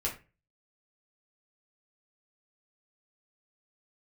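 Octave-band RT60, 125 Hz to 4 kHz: 0.45, 0.35, 0.35, 0.25, 0.30, 0.25 s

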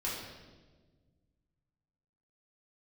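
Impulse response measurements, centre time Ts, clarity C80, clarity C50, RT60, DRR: 70 ms, 3.5 dB, 1.0 dB, 1.4 s, -6.5 dB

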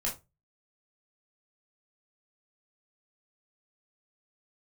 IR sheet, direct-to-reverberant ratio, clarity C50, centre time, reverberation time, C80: -4.0 dB, 10.5 dB, 22 ms, 0.25 s, 20.0 dB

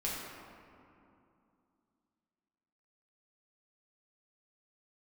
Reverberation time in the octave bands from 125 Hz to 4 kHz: 3.0, 3.4, 2.6, 2.7, 2.0, 1.3 s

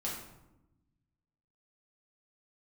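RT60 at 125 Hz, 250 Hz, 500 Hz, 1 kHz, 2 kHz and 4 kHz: 1.8, 1.5, 1.0, 0.90, 0.70, 0.55 s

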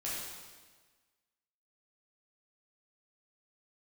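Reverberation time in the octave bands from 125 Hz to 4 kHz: 1.4, 1.5, 1.4, 1.4, 1.4, 1.3 s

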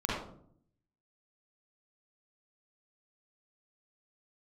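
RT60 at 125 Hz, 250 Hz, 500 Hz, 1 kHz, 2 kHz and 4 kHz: 1.0, 0.90, 0.70, 0.55, 0.40, 0.35 s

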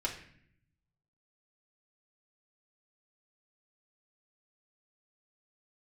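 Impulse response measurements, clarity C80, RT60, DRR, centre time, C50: 12.0 dB, 0.60 s, -4.0 dB, 20 ms, 9.0 dB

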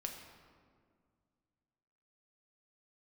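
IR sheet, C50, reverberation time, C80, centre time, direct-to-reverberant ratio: 5.5 dB, 2.0 s, 6.5 dB, 44 ms, 2.0 dB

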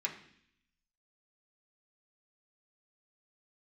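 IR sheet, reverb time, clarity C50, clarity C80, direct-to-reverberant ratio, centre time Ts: 0.65 s, 10.0 dB, 12.5 dB, -2.0 dB, 17 ms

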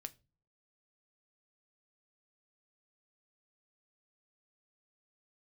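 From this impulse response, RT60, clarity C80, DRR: not exponential, 29.5 dB, 10.0 dB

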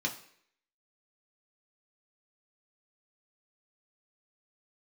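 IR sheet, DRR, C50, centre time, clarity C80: -0.5 dB, 11.5 dB, 14 ms, 15.0 dB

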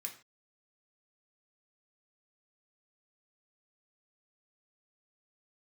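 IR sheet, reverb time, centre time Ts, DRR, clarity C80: not exponential, 13 ms, 1.5 dB, 15.0 dB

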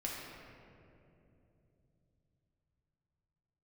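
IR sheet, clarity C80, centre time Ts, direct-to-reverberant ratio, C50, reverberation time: 1.0 dB, 0.122 s, -4.5 dB, -0.5 dB, 3.0 s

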